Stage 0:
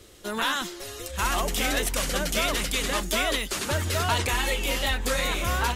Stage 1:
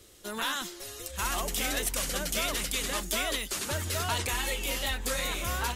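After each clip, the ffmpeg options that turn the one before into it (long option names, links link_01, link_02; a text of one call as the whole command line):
ffmpeg -i in.wav -af "highshelf=frequency=5100:gain=7,volume=-6.5dB" out.wav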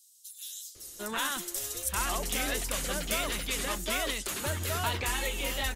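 ffmpeg -i in.wav -filter_complex "[0:a]acrossover=split=4700[link_01][link_02];[link_01]adelay=750[link_03];[link_03][link_02]amix=inputs=2:normalize=0" out.wav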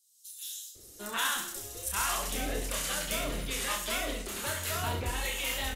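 ffmpeg -i in.wav -filter_complex "[0:a]acrusher=bits=9:mode=log:mix=0:aa=0.000001,acrossover=split=710[link_01][link_02];[link_01]aeval=exprs='val(0)*(1-0.7/2+0.7/2*cos(2*PI*1.2*n/s))':channel_layout=same[link_03];[link_02]aeval=exprs='val(0)*(1-0.7/2-0.7/2*cos(2*PI*1.2*n/s))':channel_layout=same[link_04];[link_03][link_04]amix=inputs=2:normalize=0,aecho=1:1:30|67.5|114.4|173|246.2:0.631|0.398|0.251|0.158|0.1" out.wav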